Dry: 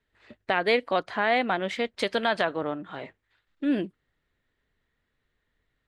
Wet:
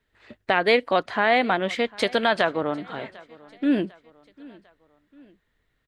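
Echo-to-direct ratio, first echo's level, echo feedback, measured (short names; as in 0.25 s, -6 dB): -22.0 dB, -23.0 dB, 47%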